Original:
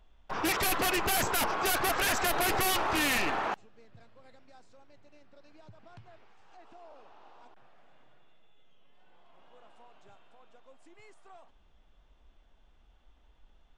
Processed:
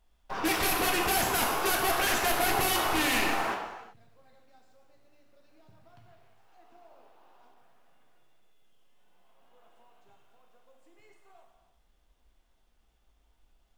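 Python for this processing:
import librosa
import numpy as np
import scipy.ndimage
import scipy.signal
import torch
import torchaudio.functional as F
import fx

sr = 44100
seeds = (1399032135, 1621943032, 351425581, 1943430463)

y = fx.law_mismatch(x, sr, coded='A')
y = fx.rev_gated(y, sr, seeds[0], gate_ms=410, shape='falling', drr_db=1.0)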